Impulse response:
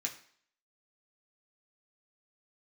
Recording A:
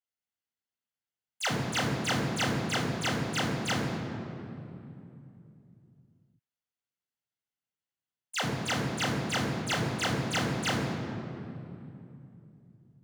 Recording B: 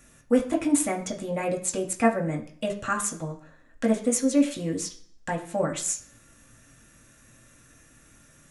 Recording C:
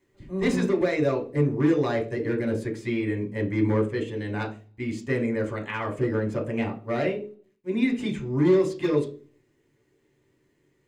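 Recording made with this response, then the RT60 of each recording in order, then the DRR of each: B; 2.8, 0.55, 0.40 s; -1.5, -1.0, 0.5 dB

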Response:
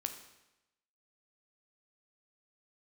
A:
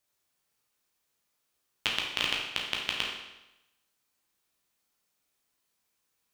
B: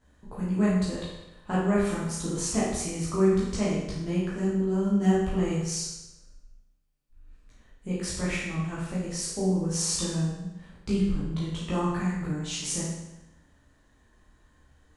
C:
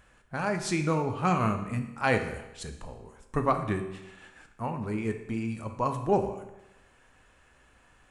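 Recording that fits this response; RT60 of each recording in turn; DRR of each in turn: C; 0.95, 0.95, 0.95 s; -2.0, -8.5, 6.0 dB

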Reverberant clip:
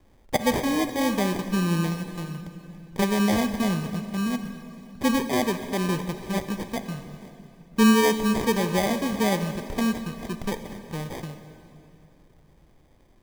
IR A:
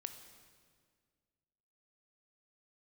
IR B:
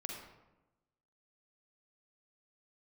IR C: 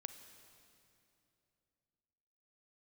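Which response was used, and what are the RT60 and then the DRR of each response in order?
C; 1.9, 1.0, 2.9 s; 7.5, 0.0, 9.0 dB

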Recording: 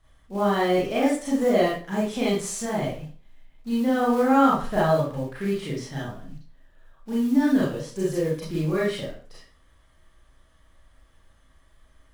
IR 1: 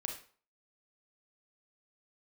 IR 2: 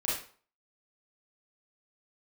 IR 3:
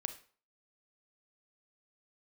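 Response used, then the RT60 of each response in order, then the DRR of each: 2; 0.45, 0.45, 0.45 s; 2.0, -7.5, 8.5 dB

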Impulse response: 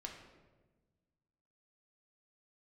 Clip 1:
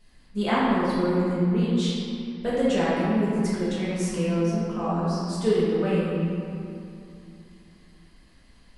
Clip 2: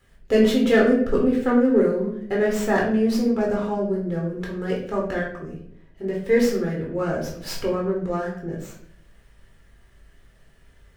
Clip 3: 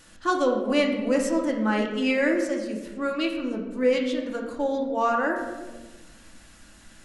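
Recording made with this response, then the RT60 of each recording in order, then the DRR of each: 3; 2.7, 0.65, 1.3 s; -9.5, -3.5, 0.0 dB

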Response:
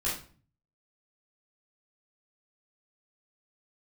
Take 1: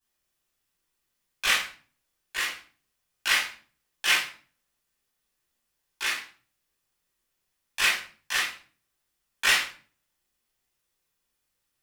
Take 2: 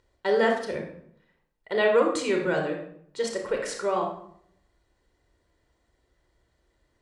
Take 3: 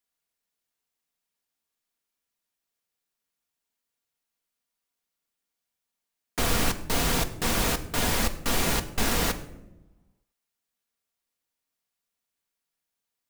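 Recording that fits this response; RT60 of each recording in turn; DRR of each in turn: 1; 0.40, 0.65, 1.0 s; -8.5, 2.0, 6.5 dB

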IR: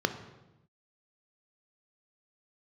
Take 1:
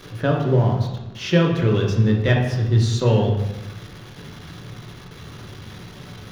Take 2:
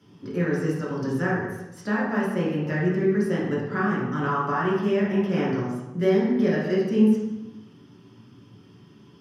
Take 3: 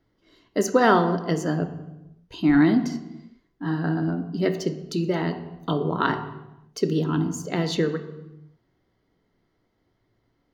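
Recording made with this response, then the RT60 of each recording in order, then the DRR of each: 3; 0.95, 0.95, 0.95 s; -0.5, -7.0, 8.0 dB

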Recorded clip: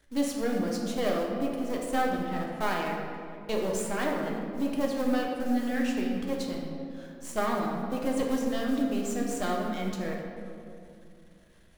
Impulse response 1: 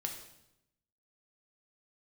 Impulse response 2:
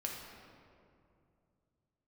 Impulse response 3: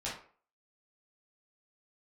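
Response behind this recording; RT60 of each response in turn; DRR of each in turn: 2; 0.85, 2.5, 0.45 s; 2.0, -1.5, -8.5 dB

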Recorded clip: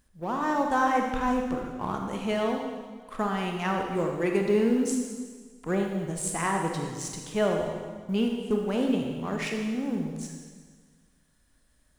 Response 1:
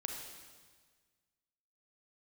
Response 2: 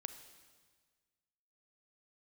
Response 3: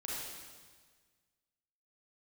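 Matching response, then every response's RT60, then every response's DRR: 1; 1.5, 1.5, 1.5 s; 1.5, 9.0, -6.0 dB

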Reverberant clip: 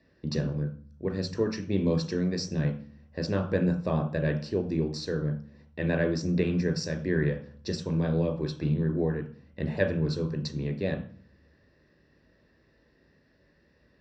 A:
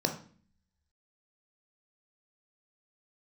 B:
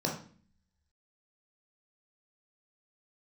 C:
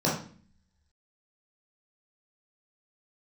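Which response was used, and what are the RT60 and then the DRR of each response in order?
A; 0.45, 0.45, 0.45 s; 3.5, -1.5, -6.5 dB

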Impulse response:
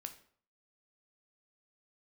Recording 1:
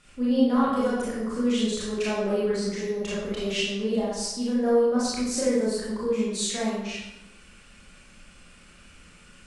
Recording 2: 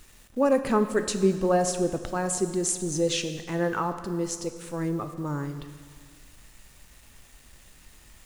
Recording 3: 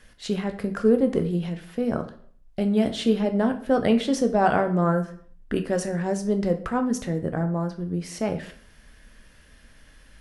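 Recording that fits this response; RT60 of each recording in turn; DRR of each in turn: 3; 0.95, 1.7, 0.55 s; -8.5, 8.0, 6.5 dB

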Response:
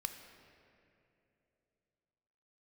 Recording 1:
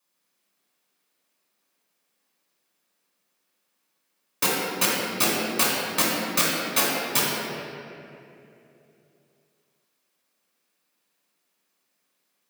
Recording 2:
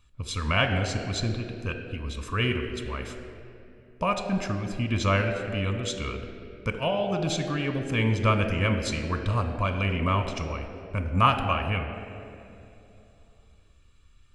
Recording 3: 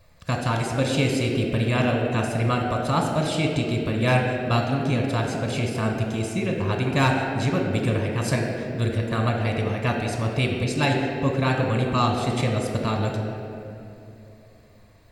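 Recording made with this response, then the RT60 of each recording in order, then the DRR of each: 2; 2.9, 2.9, 2.9 s; -5.5, 6.0, 1.5 dB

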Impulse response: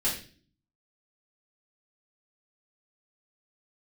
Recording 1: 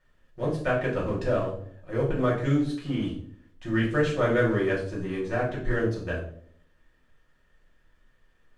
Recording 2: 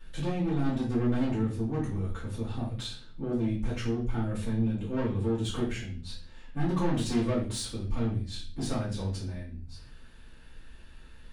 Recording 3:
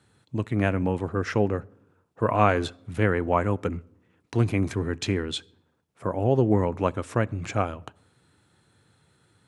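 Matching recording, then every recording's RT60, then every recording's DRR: 2; 0.60, 0.40, 0.80 s; -5.5, -8.5, 21.5 dB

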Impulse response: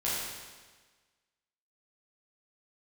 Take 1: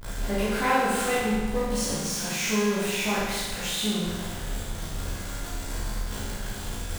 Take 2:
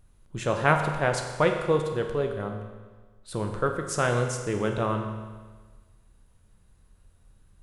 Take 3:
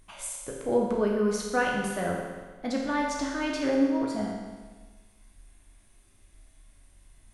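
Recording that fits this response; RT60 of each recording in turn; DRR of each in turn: 1; 1.4, 1.4, 1.4 s; -9.0, 3.5, -1.5 dB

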